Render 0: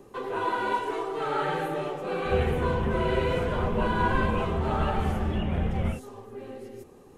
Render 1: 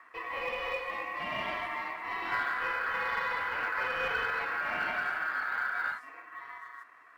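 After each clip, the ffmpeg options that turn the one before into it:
-filter_complex "[0:a]aeval=exprs='val(0)*sin(2*PI*1500*n/s)':c=same,asplit=2[s0][s1];[s1]highpass=f=720:p=1,volume=4.47,asoftclip=type=tanh:threshold=0.266[s2];[s0][s2]amix=inputs=2:normalize=0,lowpass=f=1300:p=1,volume=0.501,acrusher=bits=9:mode=log:mix=0:aa=0.000001,volume=0.501"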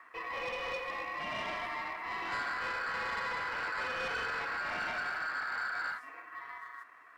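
-af "asoftclip=type=tanh:threshold=0.0282"

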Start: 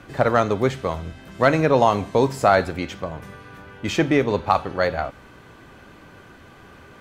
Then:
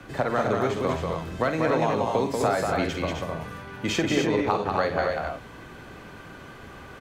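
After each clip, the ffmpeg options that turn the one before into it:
-filter_complex "[0:a]acrossover=split=120|560|1700[s0][s1][s2][s3];[s0]alimiter=level_in=4.22:limit=0.0631:level=0:latency=1,volume=0.237[s4];[s4][s1][s2][s3]amix=inputs=4:normalize=0,acompressor=threshold=0.0794:ratio=6,aecho=1:1:48|188|257|281:0.376|0.631|0.473|0.447"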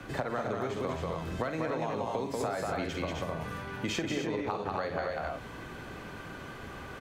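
-af "acompressor=threshold=0.0282:ratio=4"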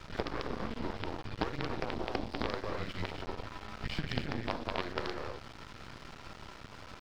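-af "afreqshift=-180,aresample=11025,acrusher=bits=5:dc=4:mix=0:aa=0.000001,aresample=44100,aeval=exprs='sgn(val(0))*max(abs(val(0))-0.00237,0)':c=same"

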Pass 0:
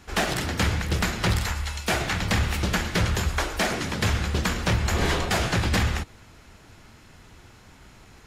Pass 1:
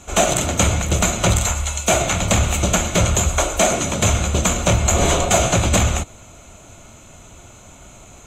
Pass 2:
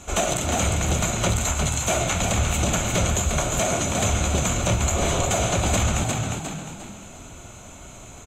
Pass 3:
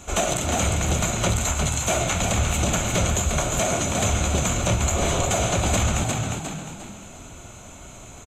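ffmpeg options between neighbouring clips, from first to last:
-af "superequalizer=8b=2.24:11b=0.398:14b=0.447:15b=3.55,volume=2"
-filter_complex "[0:a]asplit=2[s0][s1];[s1]asplit=4[s2][s3][s4][s5];[s2]adelay=354,afreqshift=43,volume=0.398[s6];[s3]adelay=708,afreqshift=86,volume=0.143[s7];[s4]adelay=1062,afreqshift=129,volume=0.0519[s8];[s5]adelay=1416,afreqshift=172,volume=0.0186[s9];[s6][s7][s8][s9]amix=inputs=4:normalize=0[s10];[s0][s10]amix=inputs=2:normalize=0,alimiter=limit=0.237:level=0:latency=1:release=221"
-af "aresample=32000,aresample=44100"

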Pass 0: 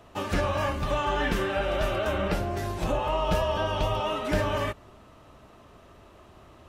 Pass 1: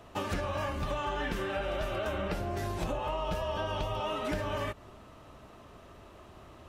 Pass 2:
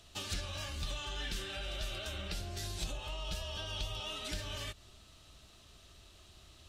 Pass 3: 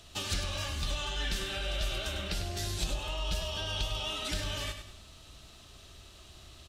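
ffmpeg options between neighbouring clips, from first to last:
-af "acompressor=threshold=0.0316:ratio=6"
-af "equalizer=f=125:t=o:w=1:g=-6,equalizer=f=250:t=o:w=1:g=-9,equalizer=f=500:t=o:w=1:g=-10,equalizer=f=1000:t=o:w=1:g=-12,equalizer=f=2000:t=o:w=1:g=-5,equalizer=f=4000:t=o:w=1:g=9,equalizer=f=8000:t=o:w=1:g=6,volume=0.891"
-af "aecho=1:1:100|200|300|400:0.376|0.135|0.0487|0.0175,volume=1.78"

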